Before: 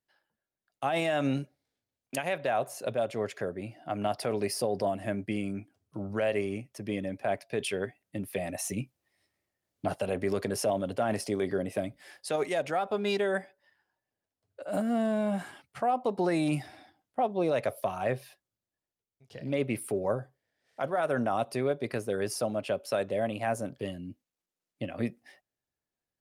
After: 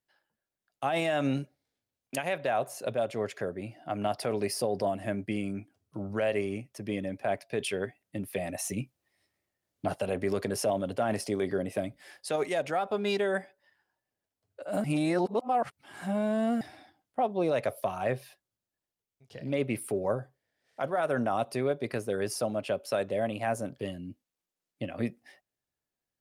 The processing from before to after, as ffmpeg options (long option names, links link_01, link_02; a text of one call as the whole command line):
ffmpeg -i in.wav -filter_complex "[0:a]asplit=3[link_01][link_02][link_03];[link_01]atrim=end=14.842[link_04];[link_02]atrim=start=14.838:end=16.612,asetpts=PTS-STARTPTS,areverse[link_05];[link_03]atrim=start=16.608[link_06];[link_04][link_05]acrossfade=duration=0.004:curve1=hsin:curve2=hsin[link_07];[link_07][link_06]acrossfade=duration=0.004:curve1=hsin:curve2=hsin" out.wav